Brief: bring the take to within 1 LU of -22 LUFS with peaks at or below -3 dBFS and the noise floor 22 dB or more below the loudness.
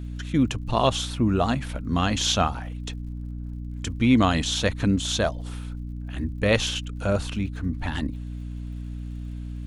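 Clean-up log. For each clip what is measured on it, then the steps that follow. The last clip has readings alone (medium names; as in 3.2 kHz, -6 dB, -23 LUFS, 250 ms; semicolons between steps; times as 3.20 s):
tick rate 59 per s; hum 60 Hz; highest harmonic 300 Hz; hum level -31 dBFS; loudness -25.5 LUFS; peak level -6.5 dBFS; loudness target -22.0 LUFS
-> de-click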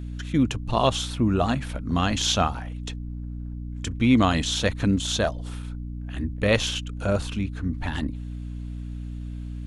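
tick rate 0.41 per s; hum 60 Hz; highest harmonic 300 Hz; hum level -31 dBFS
-> hum notches 60/120/180/240/300 Hz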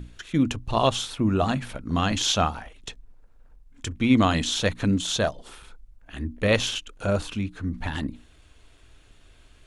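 hum not found; loudness -25.0 LUFS; peak level -7.5 dBFS; loudness target -22.0 LUFS
-> trim +3 dB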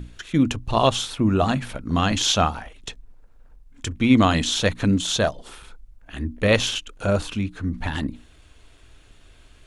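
loudness -22.0 LUFS; peak level -4.5 dBFS; noise floor -52 dBFS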